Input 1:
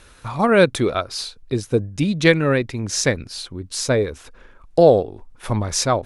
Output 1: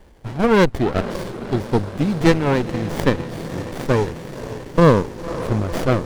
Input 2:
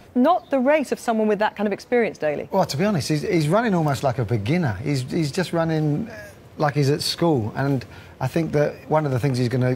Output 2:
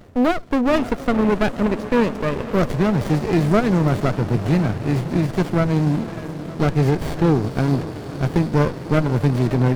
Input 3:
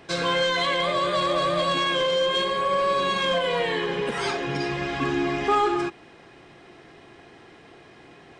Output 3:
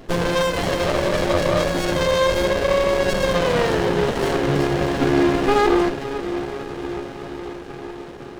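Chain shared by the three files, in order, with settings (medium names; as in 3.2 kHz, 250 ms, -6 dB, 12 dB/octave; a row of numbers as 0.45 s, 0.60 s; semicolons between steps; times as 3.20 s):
echo that smears into a reverb 528 ms, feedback 73%, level -12.5 dB; sliding maximum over 33 samples; normalise loudness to -20 LUFS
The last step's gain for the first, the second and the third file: +1.0 dB, +2.0 dB, +8.5 dB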